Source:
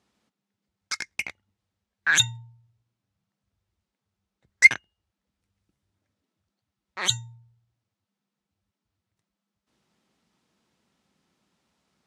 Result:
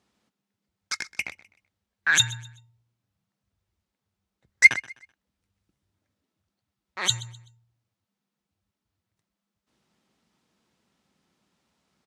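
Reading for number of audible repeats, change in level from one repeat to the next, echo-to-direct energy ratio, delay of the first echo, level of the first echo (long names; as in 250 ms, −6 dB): 2, −10.0 dB, −18.5 dB, 127 ms, −19.0 dB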